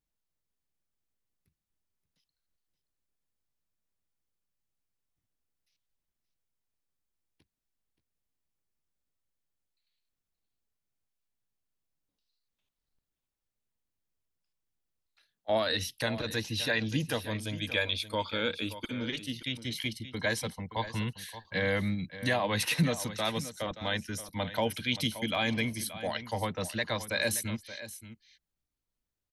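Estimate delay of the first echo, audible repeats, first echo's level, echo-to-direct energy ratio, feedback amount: 0.576 s, 1, -13.5 dB, -13.5 dB, no steady repeat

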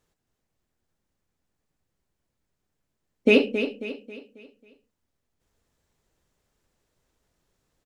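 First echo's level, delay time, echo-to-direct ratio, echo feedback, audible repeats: -9.5 dB, 0.271 s, -8.5 dB, 42%, 4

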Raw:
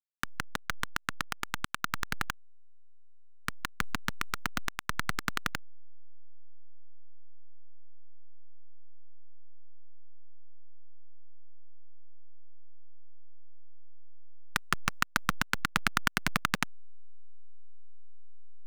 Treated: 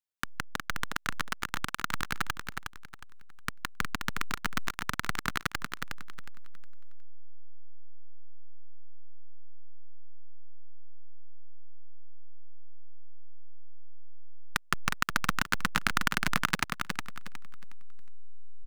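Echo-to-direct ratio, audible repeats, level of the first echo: -4.5 dB, 3, -5.0 dB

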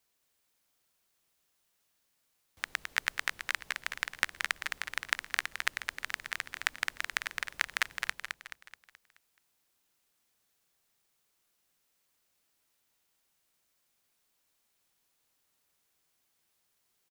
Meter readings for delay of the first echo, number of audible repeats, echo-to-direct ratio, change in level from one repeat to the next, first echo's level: 0.214 s, 5, -4.5 dB, -6.5 dB, -5.5 dB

